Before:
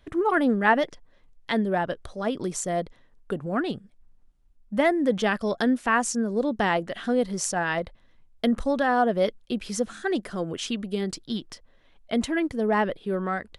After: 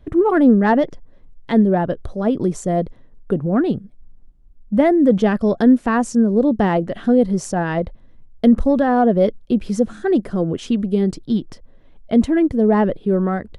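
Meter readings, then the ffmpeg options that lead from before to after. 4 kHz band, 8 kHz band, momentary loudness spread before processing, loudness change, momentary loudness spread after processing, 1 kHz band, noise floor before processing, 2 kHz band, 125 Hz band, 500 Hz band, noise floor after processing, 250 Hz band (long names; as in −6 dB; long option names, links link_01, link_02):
can't be measured, −3.5 dB, 10 LU, +8.5 dB, 9 LU, +3.5 dB, −59 dBFS, −1.5 dB, +12.0 dB, +8.0 dB, −46 dBFS, +11.0 dB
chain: -af "acontrast=86,tiltshelf=frequency=790:gain=8.5,volume=-2.5dB"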